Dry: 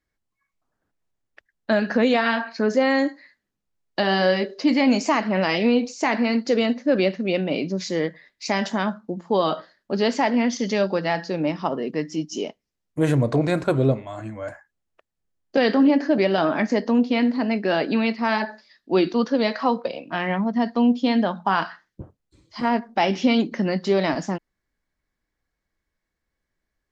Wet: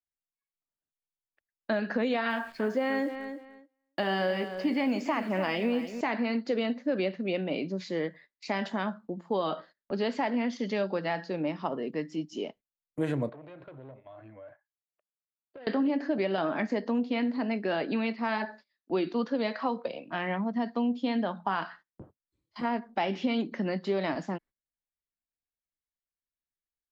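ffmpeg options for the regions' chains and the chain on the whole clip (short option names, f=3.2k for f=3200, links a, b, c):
-filter_complex "[0:a]asettb=1/sr,asplit=3[a][b][c];[a]atrim=end=2.304[d];[b]atrim=start=2.3:end=6.01,asetpts=PTS-STARTPTS,afade=t=in:d=0.004:c=qsin,afade=t=out:st=3.706:d=0.004:c=qsin,bandreject=f=4k:w=7.2,acrusher=bits=8:dc=4:mix=0:aa=0.000001,asplit=2[e][f];[f]adelay=296,lowpass=f=4.2k:p=1,volume=-12dB,asplit=2[g][h];[h]adelay=296,lowpass=f=4.2k:p=1,volume=0.23,asplit=2[i][j];[j]adelay=296,lowpass=f=4.2k:p=1,volume=0.23[k];[e][g][i][k]amix=inputs=4:normalize=0,atrim=end_sample=163611[l];[c]atrim=start=6.006[m];[d][l]acrossfade=d=0.004:c1=hsin:c2=qsin[n];[n][m]acrossfade=d=0.004:c1=qsin:c2=hsin,asettb=1/sr,asplit=3[o][p][q];[o]atrim=end=13.294[r];[p]atrim=start=13.29:end=15.67,asetpts=PTS-STARTPTS,afade=t=in:d=0.004:c=qsin,afade=t=out:st=2.376:d=0.004:c=qsin,aeval=exprs='(tanh(10*val(0)+0.35)-tanh(0.35))/10':c=same,highpass=110,equalizer=f=130:t=q:w=4:g=4,equalizer=f=200:t=q:w=4:g=-9,equalizer=f=590:t=q:w=4:g=6,lowpass=f=3.6k:w=0.5412,lowpass=f=3.6k:w=1.3066,acompressor=threshold=-39dB:ratio=5:attack=3.2:release=140:knee=1:detection=peak[s];[q]atrim=start=15.666[t];[r][s]acrossfade=d=0.004:c1=hsin:c2=qsin[u];[u][t]acrossfade=d=0.004:c1=qsin:c2=hsin,agate=range=-18dB:threshold=-43dB:ratio=16:detection=peak,equalizer=f=5.8k:w=2.4:g=-8,acrossover=split=140|5800[v][w][x];[v]acompressor=threshold=-48dB:ratio=4[y];[w]acompressor=threshold=-18dB:ratio=4[z];[x]acompressor=threshold=-59dB:ratio=4[aa];[y][z][aa]amix=inputs=3:normalize=0,volume=-6.5dB"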